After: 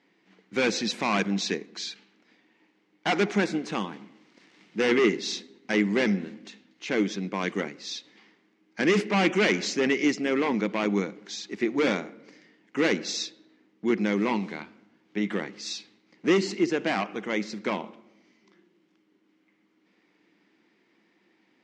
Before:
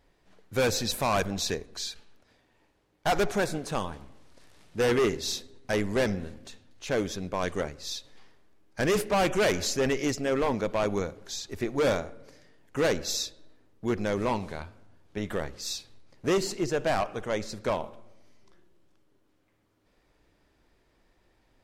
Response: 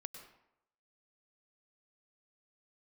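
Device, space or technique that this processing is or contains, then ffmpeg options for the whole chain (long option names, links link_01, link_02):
television speaker: -af "highpass=frequency=180:width=0.5412,highpass=frequency=180:width=1.3066,equalizer=frequency=200:width_type=q:width=4:gain=9,equalizer=frequency=320:width_type=q:width=4:gain=8,equalizer=frequency=600:width_type=q:width=4:gain=-7,equalizer=frequency=2100:width_type=q:width=4:gain=9,equalizer=frequency=2900:width_type=q:width=4:gain=4,lowpass=frequency=6500:width=0.5412,lowpass=frequency=6500:width=1.3066"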